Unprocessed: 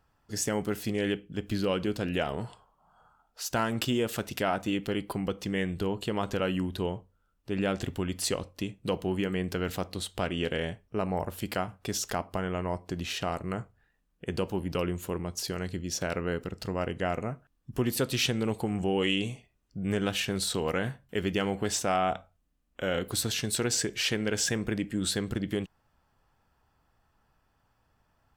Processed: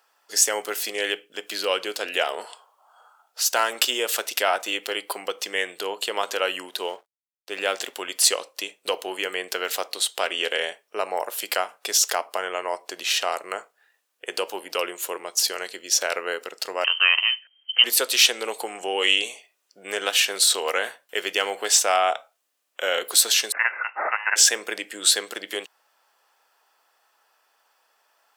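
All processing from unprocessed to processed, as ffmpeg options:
ffmpeg -i in.wav -filter_complex "[0:a]asettb=1/sr,asplit=3[link_01][link_02][link_03];[link_01]atrim=end=6.684[link_04];[link_02]atrim=start=6.68:end=7.96,asetpts=PTS-STARTPTS,afade=type=in:duration=0.004:curve=qsin,afade=type=out:start_time=1.276:duration=0.004:curve=qsin,highpass=frequency=50:poles=1,aeval=exprs='sgn(val(0))*max(abs(val(0))-0.00133,0)':channel_layout=same[link_05];[link_03]atrim=start=7.956[link_06];[link_04][link_05]acrossfade=duration=0.004:curve1=hsin:curve2=qsin[link_07];[link_07][link_06]acrossfade=duration=0.004:curve1=qsin:curve2=hsin,asettb=1/sr,asplit=3[link_08][link_09][link_10];[link_08]atrim=end=16.844[link_11];[link_09]atrim=start=16.84:end=17.84,asetpts=PTS-STARTPTS,afade=type=in:duration=0.004:curve=qsin,afade=type=out:start_time=0.996:duration=0.004:curve=qsin,aemphasis=mode=production:type=75kf,lowpass=frequency=2700:width_type=q:width=0.5098,lowpass=frequency=2700:width_type=q:width=0.6013,lowpass=frequency=2700:width_type=q:width=0.9,lowpass=frequency=2700:width_type=q:width=2.563,afreqshift=-3200[link_12];[link_10]atrim=start=17.836[link_13];[link_11][link_12]acrossfade=duration=0.004:curve1=hsin:curve2=qsin[link_14];[link_14][link_13]acrossfade=duration=0.004:curve1=qsin:curve2=hsin,asettb=1/sr,asplit=3[link_15][link_16][link_17];[link_15]atrim=end=23.524[link_18];[link_16]atrim=start=23.52:end=24.36,asetpts=PTS-STARTPTS,afade=type=in:duration=0.004:curve=qsin,afade=type=out:start_time=0.836:duration=0.004:curve=qsin,highpass=frequency=1100:width_type=q:width=8.1,lowpass=frequency=2600:width_type=q:width=0.5098,lowpass=frequency=2600:width_type=q:width=0.6013,lowpass=frequency=2600:width_type=q:width=0.9,lowpass=frequency=2600:width_type=q:width=2.563,afreqshift=-3100[link_19];[link_17]atrim=start=24.356[link_20];[link_18][link_19]acrossfade=duration=0.004:curve1=hsin:curve2=qsin[link_21];[link_21][link_20]acrossfade=duration=0.004:curve1=qsin:curve2=hsin,highpass=frequency=460:width=0.5412,highpass=frequency=460:width=1.3066,highshelf=frequency=2100:gain=9,volume=5.5dB" out.wav

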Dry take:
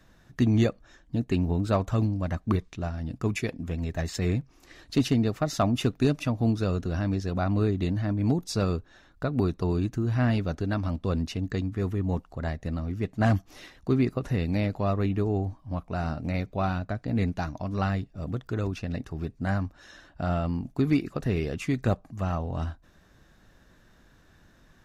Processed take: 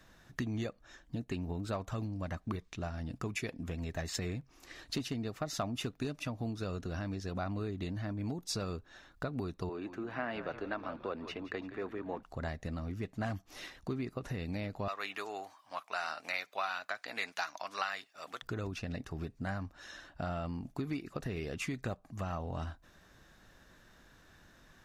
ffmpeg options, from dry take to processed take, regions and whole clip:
ffmpeg -i in.wav -filter_complex "[0:a]asettb=1/sr,asplit=3[link_01][link_02][link_03];[link_01]atrim=end=9.694[link_04];[link_02]atrim=start=9.69:end=12.23,asetpts=PTS-STARTPTS,afade=type=in:duration=0.004:curve=qsin,afade=type=out:start_time=2.536:duration=0.004:curve=qsin,acrossover=split=290 3000:gain=0.0631 1 0.112[link_05][link_06][link_07];[link_05][link_06][link_07]amix=inputs=3:normalize=0,asplit=7[link_08][link_09][link_10][link_11][link_12][link_13][link_14];[link_09]adelay=171,afreqshift=-75,volume=-14dB[link_15];[link_10]adelay=342,afreqshift=-150,volume=-19.2dB[link_16];[link_11]adelay=513,afreqshift=-225,volume=-24.4dB[link_17];[link_12]adelay=684,afreqshift=-300,volume=-29.6dB[link_18];[link_13]adelay=855,afreqshift=-375,volume=-34.8dB[link_19];[link_14]adelay=1026,afreqshift=-450,volume=-40dB[link_20];[link_08][link_15][link_16][link_17][link_18][link_19][link_20]amix=inputs=7:normalize=0,atrim=end_sample=112014[link_21];[link_03]atrim=start=12.226[link_22];[link_04][link_21]acrossfade=duration=0.004:curve1=hsin:curve2=qsin[link_23];[link_23][link_22]acrossfade=duration=0.004:curve1=qsin:curve2=hsin,asettb=1/sr,asplit=3[link_24][link_25][link_26];[link_24]atrim=end=14.884[link_27];[link_25]atrim=start=14.88:end=18.42,asetpts=PTS-STARTPTS,afade=type=in:duration=0.004:curve=qsin,afade=type=out:start_time=3.536:duration=0.004:curve=qsin,highpass=1200,acontrast=62[link_28];[link_26]atrim=start=18.416[link_29];[link_27][link_28]acrossfade=duration=0.004:curve1=hsin:curve2=qsin[link_30];[link_30][link_29]acrossfade=duration=0.004:curve1=qsin:curve2=hsin,acompressor=threshold=-32dB:ratio=4,lowshelf=frequency=460:gain=-6,volume=1dB" out.wav

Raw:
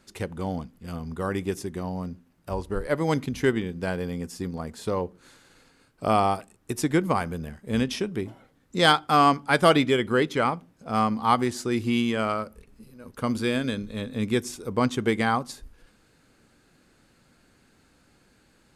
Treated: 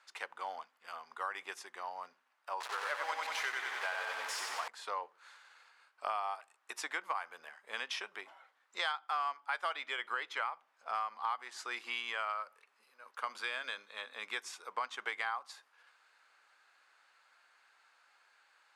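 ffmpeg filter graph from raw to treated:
ffmpeg -i in.wav -filter_complex "[0:a]asettb=1/sr,asplit=3[link_01][link_02][link_03];[link_01]atrim=end=2.604[link_04];[link_02]atrim=start=2.6:end=4.68,asetpts=PTS-STARTPTS,afade=type=in:duration=0.004:curve=qsin,afade=type=out:start_time=2.076:duration=0.004:curve=qsin,aeval=exprs='val(0)+0.5*0.0447*sgn(val(0))':channel_layout=same,highpass=frequency=500:poles=1,aecho=1:1:92|184|276|368|460|552|644|736:0.708|0.404|0.23|0.131|0.0747|0.0426|0.0243|0.0138,atrim=end_sample=91728[link_05];[link_03]atrim=start=4.676[link_06];[link_04][link_05]acrossfade=duration=0.004:curve1=hsin:curve2=qsin[link_07];[link_07][link_06]acrossfade=duration=0.004:curve1=qsin:curve2=hsin,highpass=frequency=920:width=0.5412,highpass=frequency=920:width=1.3066,aemphasis=mode=reproduction:type=riaa,acompressor=threshold=-35dB:ratio=6,volume=1.5dB" out.wav

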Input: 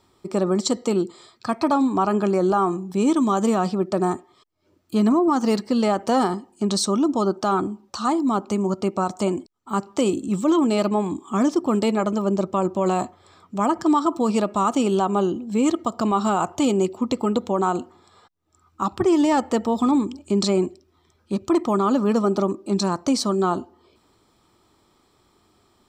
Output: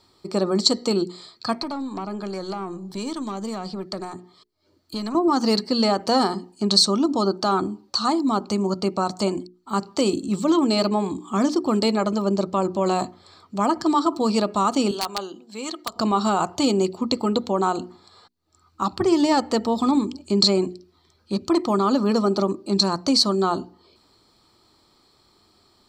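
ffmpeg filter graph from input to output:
ffmpeg -i in.wav -filter_complex "[0:a]asettb=1/sr,asplit=3[link_01][link_02][link_03];[link_01]atrim=end=1.554[link_04];[link_02]atrim=start=1.55:end=5.15,asetpts=PTS-STARTPTS,afade=type=in:duration=0.004:curve=qsin,afade=type=out:start_time=3.596:duration=0.004:curve=qsin,bandreject=frequency=2600:width=15,acrossover=split=220|780[link_05][link_06][link_07];[link_05]acompressor=threshold=-34dB:ratio=4[link_08];[link_06]acompressor=threshold=-33dB:ratio=4[link_09];[link_07]acompressor=threshold=-35dB:ratio=4[link_10];[link_08][link_09][link_10]amix=inputs=3:normalize=0,aeval=exprs='(tanh(11.2*val(0)+0.25)-tanh(0.25))/11.2':channel_layout=same[link_11];[link_03]atrim=start=5.146[link_12];[link_04][link_11]acrossfade=duration=0.004:curve1=hsin:curve2=qsin[link_13];[link_13][link_12]acrossfade=duration=0.004:curve1=qsin:curve2=hsin,asettb=1/sr,asplit=3[link_14][link_15][link_16];[link_14]atrim=end=14.914[link_17];[link_15]atrim=start=14.91:end=15.96,asetpts=PTS-STARTPTS,afade=type=in:duration=0.004:curve=qsin,afade=type=out:start_time=1.046:duration=0.004:curve=qsin,highpass=frequency=1400:poles=1,highshelf=frequency=2100:gain=-3.5,aeval=exprs='(mod(7.94*val(0)+1,2)-1)/7.94':channel_layout=same[link_18];[link_16]atrim=start=15.956[link_19];[link_17][link_18]acrossfade=duration=0.004:curve1=hsin:curve2=qsin[link_20];[link_20][link_19]acrossfade=duration=0.004:curve1=qsin:curve2=hsin,equalizer=frequency=4400:width_type=o:width=0.3:gain=14,bandreject=frequency=60:width_type=h:width=6,bandreject=frequency=120:width_type=h:width=6,bandreject=frequency=180:width_type=h:width=6,bandreject=frequency=240:width_type=h:width=6,bandreject=frequency=300:width_type=h:width=6,bandreject=frequency=360:width_type=h:width=6,bandreject=frequency=420:width_type=h:width=6" out.wav

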